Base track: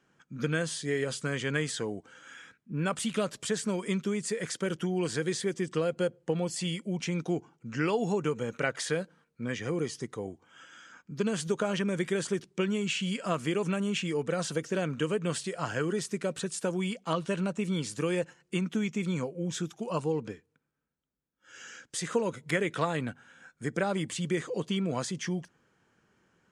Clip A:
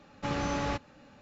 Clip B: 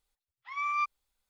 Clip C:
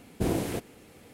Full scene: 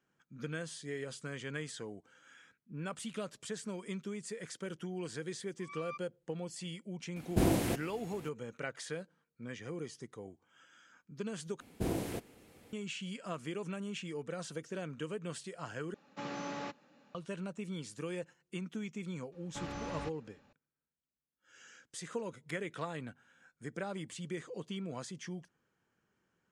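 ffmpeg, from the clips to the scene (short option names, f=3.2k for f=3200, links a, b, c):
-filter_complex "[3:a]asplit=2[a][b];[1:a]asplit=2[c][d];[0:a]volume=-10.5dB[e];[a]bandreject=f=440:w=7[f];[c]highpass=f=160:w=0.5412,highpass=f=160:w=1.3066[g];[e]asplit=3[h][i][j];[h]atrim=end=11.604[k];[b]atrim=end=1.13,asetpts=PTS-STARTPTS,volume=-7dB[l];[i]atrim=start=12.726:end=15.944[m];[g]atrim=end=1.21,asetpts=PTS-STARTPTS,volume=-8.5dB[n];[j]atrim=start=17.146[o];[2:a]atrim=end=1.29,asetpts=PTS-STARTPTS,volume=-16dB,afade=t=in:d=0.004:c=hsin,afade=t=out:st=1.286:d=0.004:c=hsin,adelay=5120[p];[f]atrim=end=1.13,asetpts=PTS-STARTPTS,afade=t=in:d=0.004:c=hsin,afade=t=out:st=1.126:d=0.004:c=hsin,adelay=7160[q];[d]atrim=end=1.21,asetpts=PTS-STARTPTS,volume=-10.5dB,afade=t=in:d=0.004:c=hsin,afade=t=out:st=1.206:d=0.004:c=hsin,adelay=19320[r];[k][l]acrossfade=d=0.004:c1=hsin:c2=hsin[s];[s][m]acrossfade=d=0.004:c1=hsin:c2=hsin[t];[t][n]acrossfade=d=0.004:c1=hsin:c2=hsin[u];[u][o]acrossfade=d=0.004:c1=hsin:c2=hsin[v];[v][p][q][r]amix=inputs=4:normalize=0"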